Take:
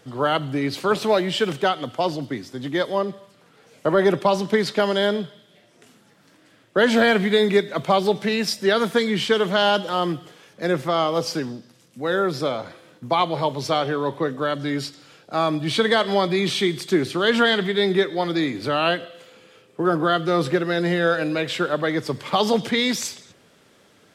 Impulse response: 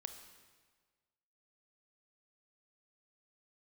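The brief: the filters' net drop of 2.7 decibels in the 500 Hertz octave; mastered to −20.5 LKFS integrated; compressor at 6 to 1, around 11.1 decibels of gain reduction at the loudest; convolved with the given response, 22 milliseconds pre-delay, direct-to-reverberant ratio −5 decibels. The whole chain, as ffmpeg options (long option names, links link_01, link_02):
-filter_complex "[0:a]equalizer=frequency=500:width_type=o:gain=-3.5,acompressor=threshold=-27dB:ratio=6,asplit=2[link_01][link_02];[1:a]atrim=start_sample=2205,adelay=22[link_03];[link_02][link_03]afir=irnorm=-1:irlink=0,volume=8.5dB[link_04];[link_01][link_04]amix=inputs=2:normalize=0,volume=4.5dB"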